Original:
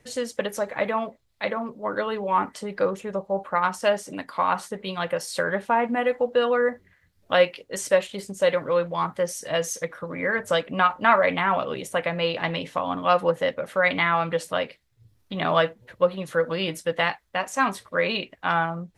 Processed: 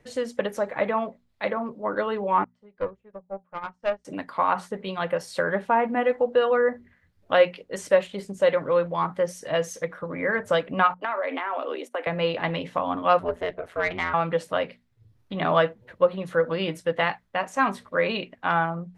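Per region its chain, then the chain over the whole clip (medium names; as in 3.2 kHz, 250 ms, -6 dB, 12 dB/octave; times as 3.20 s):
2.44–4.05 s: distance through air 92 m + valve stage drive 16 dB, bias 0.55 + upward expansion 2.5:1, over -40 dBFS
10.94–12.07 s: gate -37 dBFS, range -21 dB + steep high-pass 250 Hz 72 dB/octave + compression 4:1, threshold -25 dBFS
13.19–14.14 s: bass shelf 230 Hz -5.5 dB + ring modulator 87 Hz + valve stage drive 14 dB, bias 0.35
whole clip: treble shelf 3.7 kHz -11.5 dB; hum notches 60/120/180/240 Hz; trim +1 dB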